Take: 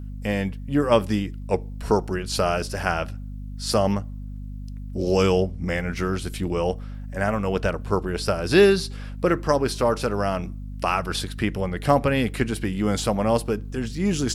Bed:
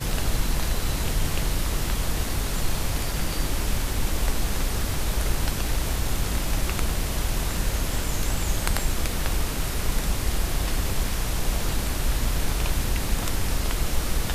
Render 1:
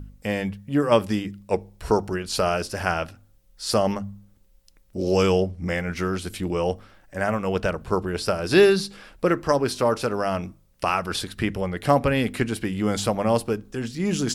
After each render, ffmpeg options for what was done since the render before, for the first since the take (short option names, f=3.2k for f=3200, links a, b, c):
-af "bandreject=f=50:t=h:w=4,bandreject=f=100:t=h:w=4,bandreject=f=150:t=h:w=4,bandreject=f=200:t=h:w=4,bandreject=f=250:t=h:w=4"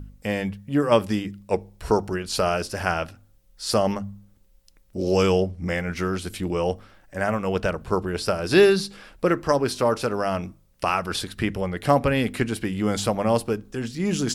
-af anull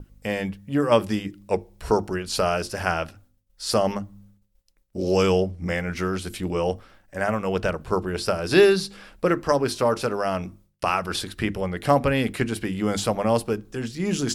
-af "agate=range=-33dB:threshold=-48dB:ratio=3:detection=peak,bandreject=f=50:t=h:w=6,bandreject=f=100:t=h:w=6,bandreject=f=150:t=h:w=6,bandreject=f=200:t=h:w=6,bandreject=f=250:t=h:w=6,bandreject=f=300:t=h:w=6,bandreject=f=350:t=h:w=6"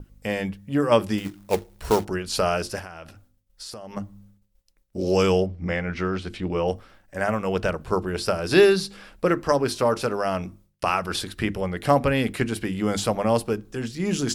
-filter_complex "[0:a]asettb=1/sr,asplit=3[a][b][c];[a]atrim=end=1.184[d];[b]atrim=start=1.18:end=2.05,asetpts=PTS-STARTPTS,afade=t=in:d=0.004:c=qsin,afade=t=out:st=0.866:d=0.004:c=qsin,acrusher=bits=3:mode=log:mix=0:aa=0.000001[e];[c]atrim=start=2.046[f];[d][e]acrossfade=d=0.004:c1=hsin:c2=qsin[g];[g][f]acrossfade=d=0.004:c1=qsin:c2=hsin,asettb=1/sr,asplit=3[h][i][j];[h]atrim=end=2.794[k];[i]atrim=start=2.79:end=3.97,asetpts=PTS-STARTPTS,afade=t=in:d=0.004:c=qsin,afade=t=out:st=1.176:d=0.004:c=qsin,acompressor=threshold=-34dB:ratio=16:attack=3.2:release=140:knee=1:detection=peak[l];[j]atrim=start=3.966[m];[k][l]acrossfade=d=0.004:c1=hsin:c2=qsin[n];[n][m]acrossfade=d=0.004:c1=qsin:c2=hsin,asettb=1/sr,asplit=3[o][p][q];[o]atrim=end=5.464[r];[p]atrim=start=5.46:end=6.68,asetpts=PTS-STARTPTS,afade=t=in:d=0.004:c=qsin,afade=t=out:st=1.216:d=0.004:c=qsin,lowpass=4k[s];[q]atrim=start=6.676[t];[r][s]acrossfade=d=0.004:c1=hsin:c2=qsin[u];[u][t]acrossfade=d=0.004:c1=qsin:c2=hsin"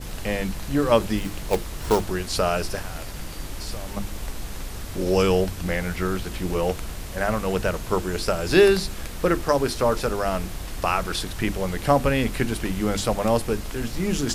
-filter_complex "[1:a]volume=-8dB[a];[0:a][a]amix=inputs=2:normalize=0"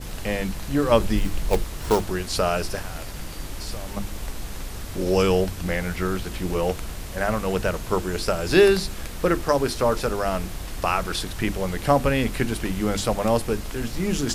-filter_complex "[0:a]asettb=1/sr,asplit=3[a][b][c];[a]atrim=end=0.914[d];[b]atrim=start=0.91:end=1.64,asetpts=PTS-STARTPTS,afade=t=in:d=0.004:c=qsin,afade=t=out:st=0.726:d=0.004:c=qsin,lowshelf=f=60:g=11.5[e];[c]atrim=start=1.636[f];[d][e]acrossfade=d=0.004:c1=hsin:c2=qsin[g];[g][f]acrossfade=d=0.004:c1=qsin:c2=hsin"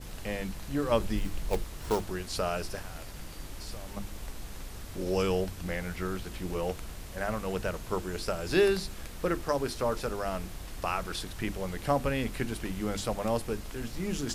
-af "volume=-8.5dB"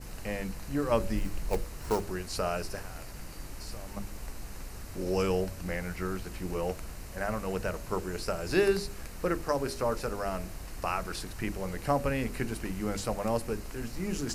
-af "equalizer=f=3.4k:t=o:w=0.26:g=-10.5,bandreject=f=80.81:t=h:w=4,bandreject=f=161.62:t=h:w=4,bandreject=f=242.43:t=h:w=4,bandreject=f=323.24:t=h:w=4,bandreject=f=404.05:t=h:w=4,bandreject=f=484.86:t=h:w=4,bandreject=f=565.67:t=h:w=4,bandreject=f=646.48:t=h:w=4"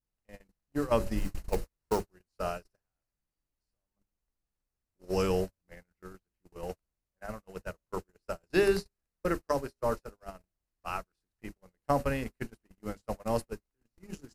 -af "bandreject=f=2.3k:w=22,agate=range=-47dB:threshold=-29dB:ratio=16:detection=peak"